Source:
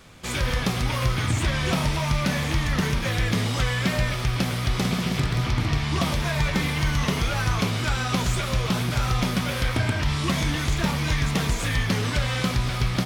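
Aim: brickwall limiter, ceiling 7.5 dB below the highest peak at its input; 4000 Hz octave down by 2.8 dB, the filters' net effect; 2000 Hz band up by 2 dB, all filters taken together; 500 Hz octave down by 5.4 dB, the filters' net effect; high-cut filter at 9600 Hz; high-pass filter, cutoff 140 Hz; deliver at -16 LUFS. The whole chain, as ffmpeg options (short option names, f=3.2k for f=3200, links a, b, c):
-af "highpass=140,lowpass=9.6k,equalizer=f=500:t=o:g=-7,equalizer=f=2k:t=o:g=4,equalizer=f=4k:t=o:g=-5,volume=12dB,alimiter=limit=-7dB:level=0:latency=1"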